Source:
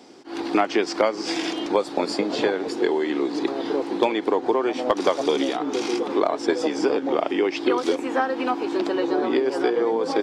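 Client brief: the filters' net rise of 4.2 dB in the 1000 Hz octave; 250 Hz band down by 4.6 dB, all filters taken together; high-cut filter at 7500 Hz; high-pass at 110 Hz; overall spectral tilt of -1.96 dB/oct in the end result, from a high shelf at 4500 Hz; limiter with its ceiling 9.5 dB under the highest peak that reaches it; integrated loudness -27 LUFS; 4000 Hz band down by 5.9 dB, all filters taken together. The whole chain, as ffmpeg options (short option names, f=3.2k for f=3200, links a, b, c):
-af "highpass=110,lowpass=7.5k,equalizer=f=250:t=o:g=-7.5,equalizer=f=1k:t=o:g=6.5,equalizer=f=4k:t=o:g=-5,highshelf=f=4.5k:g=-5.5,volume=-1dB,alimiter=limit=-14.5dB:level=0:latency=1"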